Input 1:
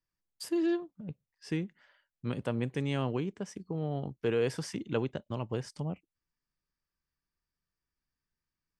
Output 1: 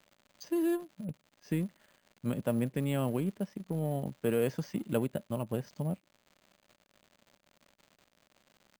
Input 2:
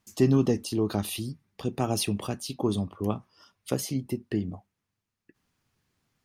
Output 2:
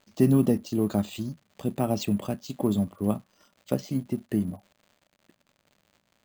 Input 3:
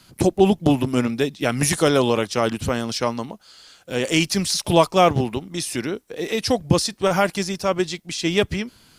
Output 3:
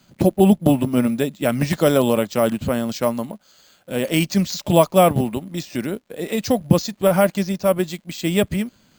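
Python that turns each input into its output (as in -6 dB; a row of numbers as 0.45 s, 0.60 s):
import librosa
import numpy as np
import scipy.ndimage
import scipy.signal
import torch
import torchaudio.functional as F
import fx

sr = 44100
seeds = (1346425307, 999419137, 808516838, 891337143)

p1 = fx.dmg_crackle(x, sr, seeds[0], per_s=150.0, level_db=-40.0)
p2 = fx.small_body(p1, sr, hz=(200.0, 580.0), ring_ms=25, db=8)
p3 = np.sign(p2) * np.maximum(np.abs(p2) - 10.0 ** (-37.0 / 20.0), 0.0)
p4 = p2 + (p3 * 10.0 ** (-7.0 / 20.0))
p5 = np.repeat(scipy.signal.resample_poly(p4, 1, 4), 4)[:len(p4)]
y = p5 * 10.0 ** (-5.5 / 20.0)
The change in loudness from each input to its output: +0.5 LU, +1.5 LU, +1.5 LU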